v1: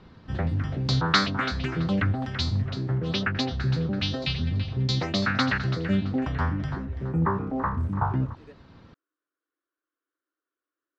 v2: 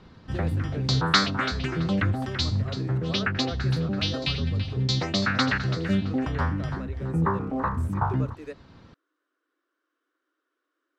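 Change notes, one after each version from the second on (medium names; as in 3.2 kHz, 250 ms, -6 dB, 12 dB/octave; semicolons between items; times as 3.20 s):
speech +11.0 dB; master: remove distance through air 64 m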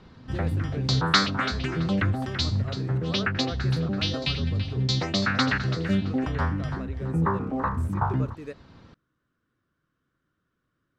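speech: remove steep high-pass 280 Hz 96 dB/octave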